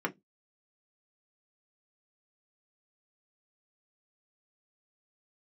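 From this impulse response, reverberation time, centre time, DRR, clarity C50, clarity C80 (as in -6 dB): no single decay rate, 6 ms, 1.5 dB, 21.0 dB, 35.0 dB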